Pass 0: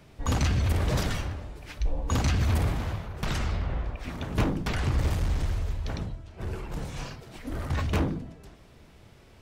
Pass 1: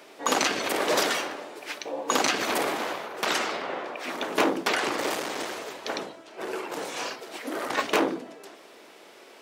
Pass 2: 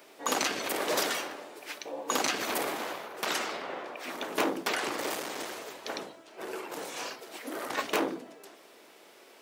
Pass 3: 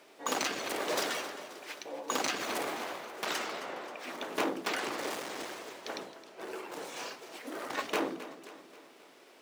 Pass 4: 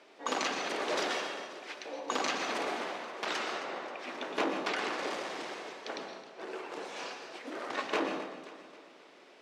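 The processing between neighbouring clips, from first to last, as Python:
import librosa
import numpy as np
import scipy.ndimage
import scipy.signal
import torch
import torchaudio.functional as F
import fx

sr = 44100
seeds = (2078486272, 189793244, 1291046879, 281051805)

y1 = scipy.signal.sosfilt(scipy.signal.butter(4, 330.0, 'highpass', fs=sr, output='sos'), x)
y1 = F.gain(torch.from_numpy(y1), 9.0).numpy()
y2 = fx.high_shelf(y1, sr, hz=11000.0, db=10.5)
y2 = F.gain(torch.from_numpy(y2), -5.5).numpy()
y3 = scipy.signal.medfilt(y2, 3)
y3 = fx.echo_feedback(y3, sr, ms=266, feedback_pct=54, wet_db=-14.5)
y3 = F.gain(torch.from_numpy(y3), -3.0).numpy()
y4 = fx.bandpass_edges(y3, sr, low_hz=170.0, high_hz=5400.0)
y4 = fx.rev_plate(y4, sr, seeds[0], rt60_s=0.66, hf_ratio=0.9, predelay_ms=105, drr_db=5.5)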